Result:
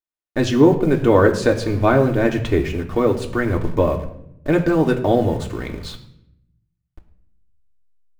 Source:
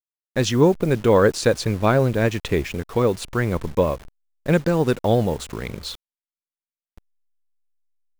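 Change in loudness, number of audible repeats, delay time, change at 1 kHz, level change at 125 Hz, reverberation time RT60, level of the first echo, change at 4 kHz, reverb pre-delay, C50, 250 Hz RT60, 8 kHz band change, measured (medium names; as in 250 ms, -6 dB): +2.5 dB, no echo, no echo, +2.5 dB, +1.0 dB, 0.75 s, no echo, -2.0 dB, 3 ms, 11.5 dB, 1.1 s, -5.0 dB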